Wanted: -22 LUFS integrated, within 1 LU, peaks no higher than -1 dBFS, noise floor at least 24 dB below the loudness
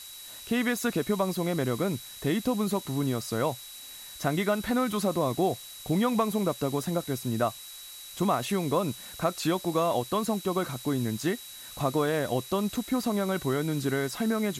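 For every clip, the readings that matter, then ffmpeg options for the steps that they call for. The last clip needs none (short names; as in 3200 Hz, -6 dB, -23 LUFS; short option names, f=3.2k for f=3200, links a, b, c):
steady tone 3900 Hz; tone level -46 dBFS; noise floor -44 dBFS; noise floor target -53 dBFS; loudness -29.0 LUFS; peak -12.5 dBFS; loudness target -22.0 LUFS
-> -af "bandreject=f=3.9k:w=30"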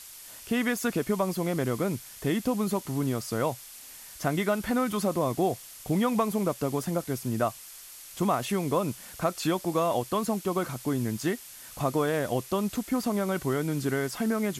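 steady tone none; noise floor -46 dBFS; noise floor target -53 dBFS
-> -af "afftdn=nr=7:nf=-46"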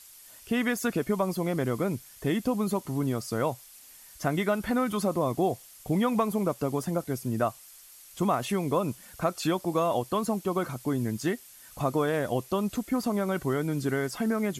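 noise floor -51 dBFS; noise floor target -53 dBFS
-> -af "afftdn=nr=6:nf=-51"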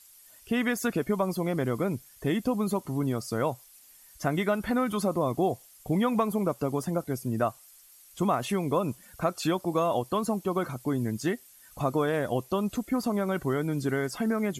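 noise floor -55 dBFS; loudness -29.0 LUFS; peak -12.5 dBFS; loudness target -22.0 LUFS
-> -af "volume=7dB"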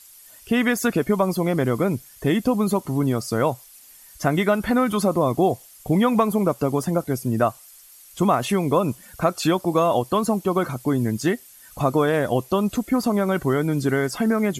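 loudness -22.0 LUFS; peak -5.5 dBFS; noise floor -48 dBFS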